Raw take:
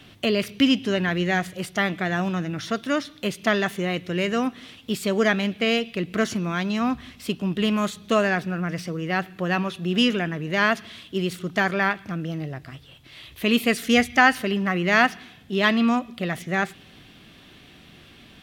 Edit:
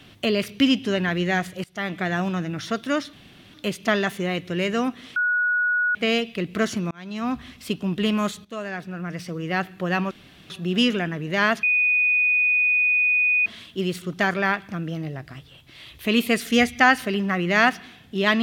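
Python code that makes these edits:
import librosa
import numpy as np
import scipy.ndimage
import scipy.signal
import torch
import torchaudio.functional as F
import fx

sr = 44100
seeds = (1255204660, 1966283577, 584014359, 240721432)

y = fx.edit(x, sr, fx.fade_in_from(start_s=1.64, length_s=0.37, floor_db=-22.5),
    fx.insert_room_tone(at_s=3.13, length_s=0.41),
    fx.bleep(start_s=4.75, length_s=0.79, hz=1460.0, db=-18.5),
    fx.fade_in_span(start_s=6.5, length_s=0.49),
    fx.fade_in_from(start_s=8.04, length_s=1.07, floor_db=-17.0),
    fx.insert_room_tone(at_s=9.7, length_s=0.39),
    fx.insert_tone(at_s=10.83, length_s=1.83, hz=2480.0, db=-16.5), tone=tone)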